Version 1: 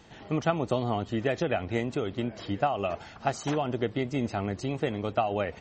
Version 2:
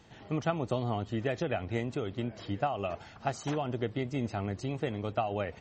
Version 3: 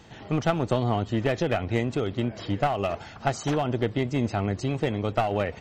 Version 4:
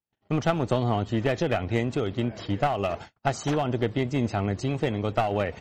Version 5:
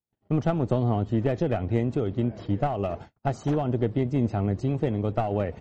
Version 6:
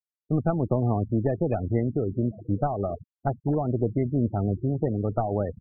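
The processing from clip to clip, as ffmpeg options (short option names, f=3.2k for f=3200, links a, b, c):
-af "equalizer=f=110:t=o:w=0.88:g=4,volume=-4.5dB"
-af "aeval=exprs='clip(val(0),-1,0.0266)':c=same,volume=7.5dB"
-af "agate=range=-47dB:threshold=-38dB:ratio=16:detection=peak"
-af "tiltshelf=f=970:g=7,volume=-4.5dB"
-af "afftfilt=real='re*gte(hypot(re,im),0.0398)':imag='im*gte(hypot(re,im),0.0398)':win_size=1024:overlap=0.75"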